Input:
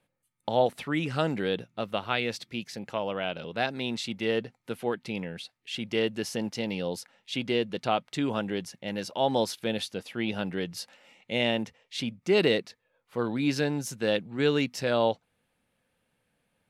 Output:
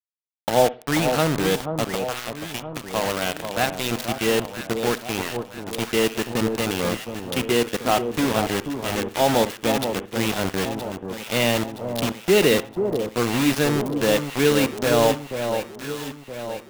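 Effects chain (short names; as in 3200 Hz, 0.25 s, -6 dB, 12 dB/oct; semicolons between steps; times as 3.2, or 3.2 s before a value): HPF 62 Hz 24 dB/oct; high shelf 3700 Hz -5 dB; 1.9–2.95 compressor 8:1, threshold -33 dBFS, peak gain reduction 11 dB; bit-crush 5-bit; echo with dull and thin repeats by turns 0.485 s, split 1100 Hz, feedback 69%, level -6.5 dB; on a send at -17 dB: reverb, pre-delay 50 ms; on the sum: gain +6 dB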